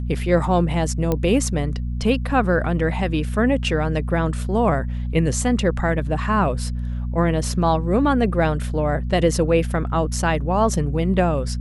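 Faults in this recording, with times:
hum 60 Hz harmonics 4 -25 dBFS
1.12 pop -9 dBFS

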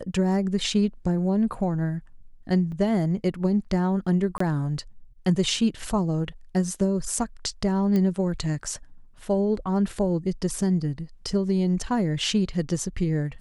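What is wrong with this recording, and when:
2.72 gap 3.7 ms
4.38–4.4 gap 24 ms
7.96 pop -15 dBFS

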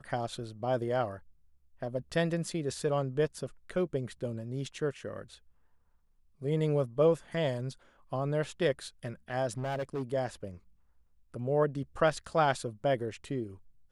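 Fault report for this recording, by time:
9.58–10.03 clipped -30 dBFS

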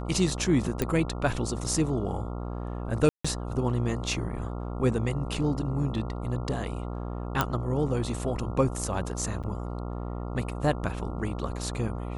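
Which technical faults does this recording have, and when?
buzz 60 Hz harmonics 23 -34 dBFS
0.82 pop -12 dBFS
3.09–3.25 gap 0.155 s
7.41 pop -9 dBFS
9.43–9.44 gap 7 ms

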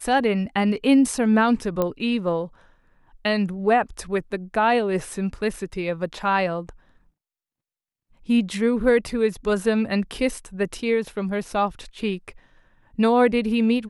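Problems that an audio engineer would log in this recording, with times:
1.82 pop -11 dBFS

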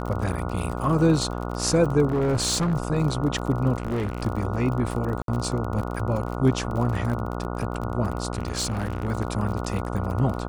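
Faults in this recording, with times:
buzz 60 Hz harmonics 24 -30 dBFS
crackle 42/s -30 dBFS
2.08–2.74 clipped -19.5 dBFS
3.78–4.23 clipped -23 dBFS
5.22–5.28 gap 62 ms
8.33–9.08 clipped -22 dBFS

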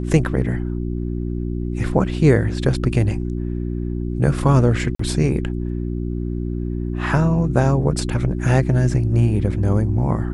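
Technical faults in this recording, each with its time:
hum 60 Hz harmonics 6 -24 dBFS
4.95–4.99 gap 44 ms

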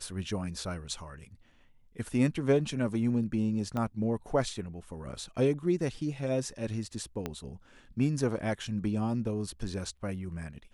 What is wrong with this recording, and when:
3.77 pop -21 dBFS
7.26 pop -19 dBFS

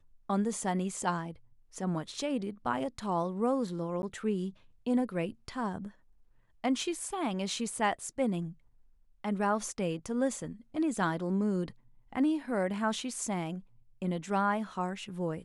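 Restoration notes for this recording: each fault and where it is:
4.02–4.03 gap 10 ms

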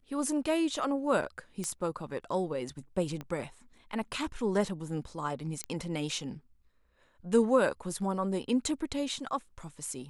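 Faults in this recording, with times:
1.64 pop -21 dBFS
3.21 pop -25 dBFS
5.64 pop -19 dBFS

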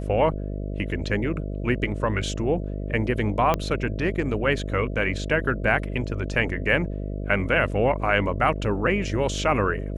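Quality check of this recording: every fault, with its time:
buzz 50 Hz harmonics 13 -30 dBFS
3.54 pop -9 dBFS

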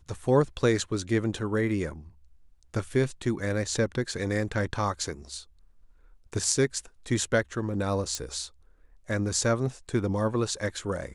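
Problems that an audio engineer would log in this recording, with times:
8.15 pop -16 dBFS

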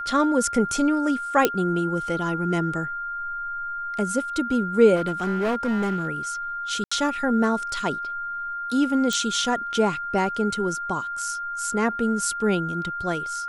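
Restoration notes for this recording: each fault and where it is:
tone 1400 Hz -28 dBFS
1.45 pop -3 dBFS
4.95–6.08 clipped -20 dBFS
6.84–6.92 gap 75 ms
9.13 pop -12 dBFS

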